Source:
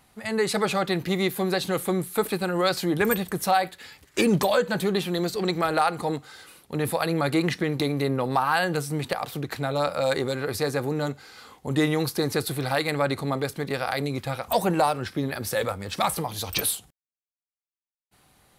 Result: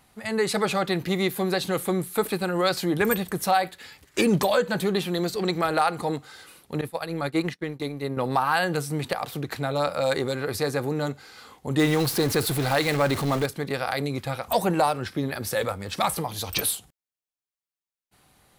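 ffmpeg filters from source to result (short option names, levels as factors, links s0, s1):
-filter_complex "[0:a]asettb=1/sr,asplit=3[s0][s1][s2];[s0]atrim=end=6.814[s3];[s1]atrim=start=6.81:end=8.17,asetpts=PTS-STARTPTS,afade=t=in:d=0.004:c=qsin,afade=t=out:st=1.356:d=0.004:c=qsin,agate=range=0.0224:threshold=0.1:ratio=3:release=100:detection=peak[s4];[s2]atrim=start=8.166[s5];[s3][s4]acrossfade=d=0.004:c1=hsin:c2=qsin[s6];[s6][s5]acrossfade=d=0.004:c1=qsin:c2=hsin,asettb=1/sr,asplit=3[s7][s8][s9];[s7]atrim=end=11.794[s10];[s8]atrim=start=11.79:end=13.46,asetpts=PTS-STARTPTS,afade=t=in:d=0.004:c=qsin,afade=t=out:st=1.666:d=0.004:c=qsin,aeval=exprs='val(0)+0.5*0.0422*sgn(val(0))':c=same[s11];[s9]atrim=start=13.456[s12];[s10][s11]acrossfade=d=0.004:c1=hsin:c2=qsin[s13];[s13][s12]acrossfade=d=0.004:c1=qsin:c2=hsin"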